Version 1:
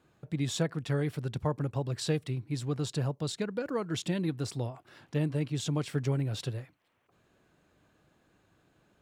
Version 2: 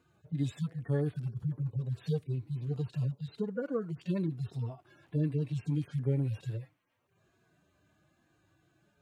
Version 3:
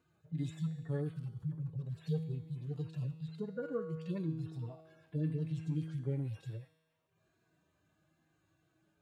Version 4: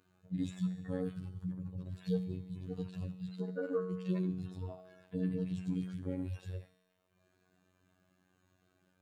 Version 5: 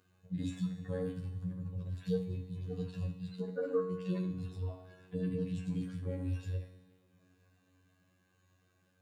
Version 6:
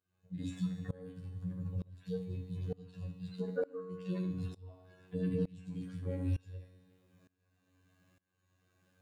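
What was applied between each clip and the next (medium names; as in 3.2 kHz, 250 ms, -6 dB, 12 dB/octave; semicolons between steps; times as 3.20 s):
harmonic-percussive separation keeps harmonic
feedback comb 160 Hz, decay 1.3 s, mix 80%; trim +7 dB
robot voice 91.9 Hz; trim +5 dB
reverberation, pre-delay 3 ms, DRR 2.5 dB
tremolo saw up 1.1 Hz, depth 95%; trim +3 dB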